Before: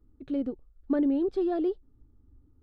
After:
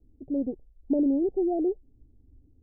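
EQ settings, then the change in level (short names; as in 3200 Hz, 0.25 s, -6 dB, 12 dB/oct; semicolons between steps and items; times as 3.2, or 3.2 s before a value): steep low-pass 810 Hz 96 dB/oct; +1.5 dB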